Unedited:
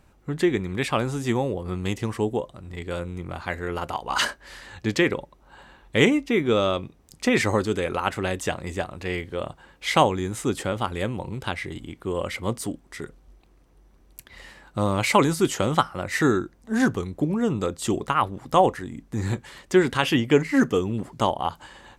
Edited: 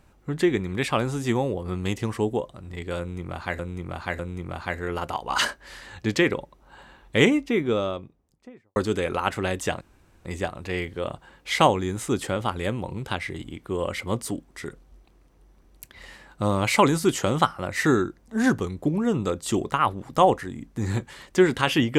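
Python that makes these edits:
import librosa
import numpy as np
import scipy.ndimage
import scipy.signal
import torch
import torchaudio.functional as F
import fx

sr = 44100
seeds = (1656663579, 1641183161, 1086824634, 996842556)

y = fx.studio_fade_out(x, sr, start_s=6.0, length_s=1.56)
y = fx.edit(y, sr, fx.repeat(start_s=2.99, length_s=0.6, count=3),
    fx.insert_room_tone(at_s=8.61, length_s=0.44), tone=tone)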